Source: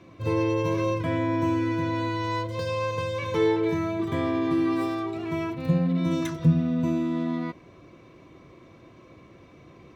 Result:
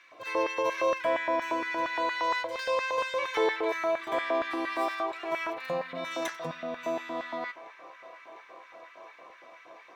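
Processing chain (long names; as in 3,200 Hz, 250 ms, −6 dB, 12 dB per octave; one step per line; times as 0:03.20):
auto-filter high-pass square 4.3 Hz 670–1,700 Hz
delay with a band-pass on its return 703 ms, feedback 81%, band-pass 1,300 Hz, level −19 dB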